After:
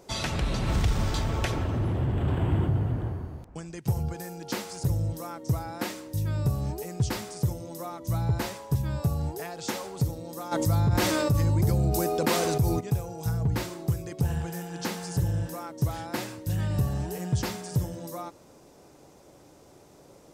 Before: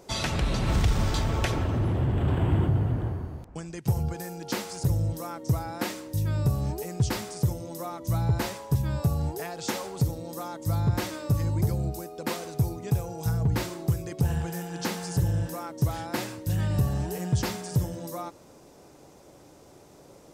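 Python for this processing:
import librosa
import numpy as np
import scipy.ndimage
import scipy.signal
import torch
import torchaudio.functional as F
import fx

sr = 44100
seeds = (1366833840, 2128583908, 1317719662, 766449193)

y = fx.env_flatten(x, sr, amount_pct=70, at=(10.51, 12.79), fade=0.02)
y = F.gain(torch.from_numpy(y), -1.5).numpy()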